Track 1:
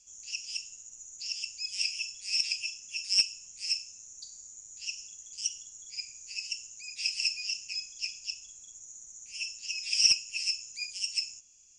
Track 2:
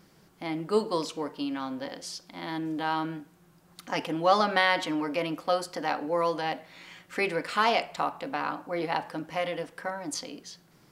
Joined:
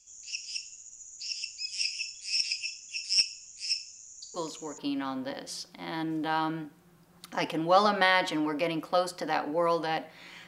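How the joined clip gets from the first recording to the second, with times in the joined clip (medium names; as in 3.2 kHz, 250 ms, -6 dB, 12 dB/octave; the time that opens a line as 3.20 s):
track 1
4.34 s: add track 2 from 0.89 s 0.44 s -6.5 dB
4.78 s: go over to track 2 from 1.33 s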